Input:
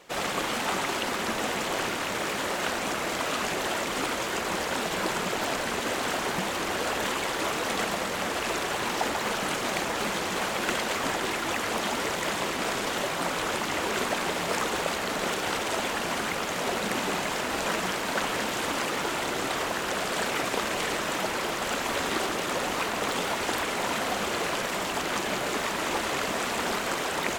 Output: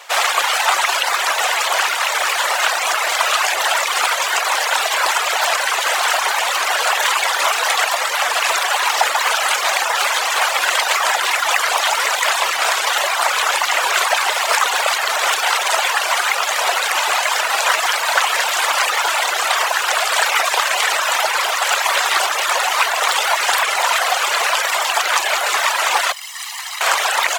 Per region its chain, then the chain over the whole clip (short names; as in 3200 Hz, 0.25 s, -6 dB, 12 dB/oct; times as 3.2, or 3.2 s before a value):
26.12–26.81 minimum comb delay 0.99 ms + passive tone stack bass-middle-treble 5-5-5
whole clip: HPF 700 Hz 24 dB/oct; reverb removal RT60 0.95 s; maximiser +17 dB; gain -1 dB